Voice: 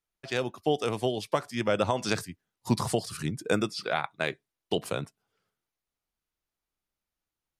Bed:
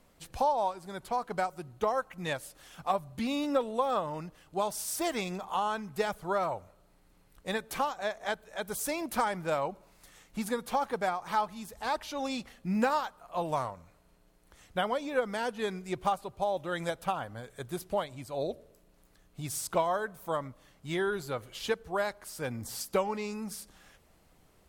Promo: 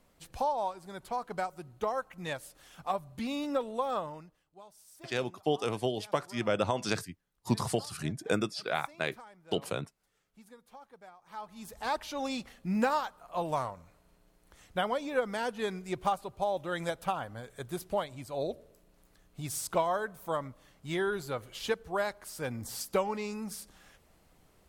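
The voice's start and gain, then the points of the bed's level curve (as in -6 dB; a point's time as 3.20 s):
4.80 s, -3.0 dB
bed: 4.04 s -3 dB
4.53 s -22 dB
11.20 s -22 dB
11.68 s -0.5 dB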